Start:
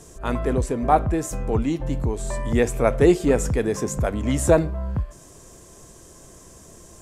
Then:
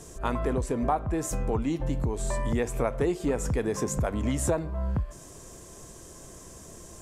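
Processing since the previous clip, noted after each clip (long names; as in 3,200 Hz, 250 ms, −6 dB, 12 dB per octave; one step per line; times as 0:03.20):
dynamic equaliser 990 Hz, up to +5 dB, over −36 dBFS, Q 2
downward compressor 5 to 1, threshold −24 dBFS, peak gain reduction 13.5 dB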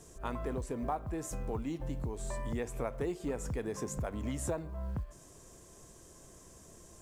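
log-companded quantiser 8 bits
level −9 dB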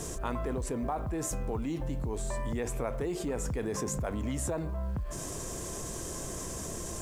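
envelope flattener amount 70%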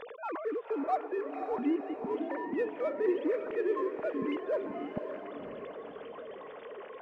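three sine waves on the formant tracks
in parallel at −10 dB: gain into a clipping stage and back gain 32.5 dB
on the sum: feedback delay with all-pass diffusion 539 ms, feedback 49%, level −7 dB
level −3 dB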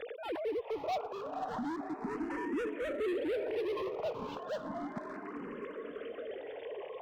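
gain into a clipping stage and back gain 34.5 dB
frequency shifter mixed with the dry sound +0.32 Hz
level +3.5 dB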